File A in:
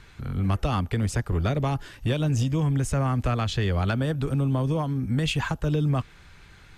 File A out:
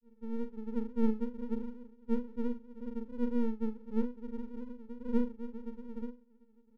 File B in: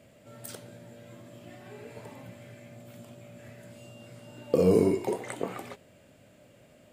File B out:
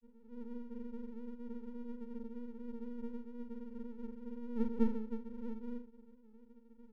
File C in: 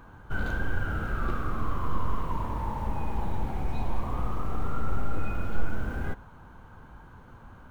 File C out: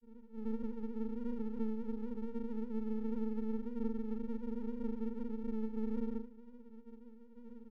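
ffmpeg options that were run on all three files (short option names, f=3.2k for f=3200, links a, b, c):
-filter_complex "[0:a]asuperpass=centerf=230:order=12:qfactor=7.4,aeval=exprs='max(val(0),0)':c=same,asplit=2[a][b];[b]adelay=41,volume=-9.5dB[c];[a][c]amix=inputs=2:normalize=0,asplit=2[d][e];[e]acompressor=threshold=-50dB:ratio=6,volume=3dB[f];[d][f]amix=inputs=2:normalize=0,volume=6.5dB"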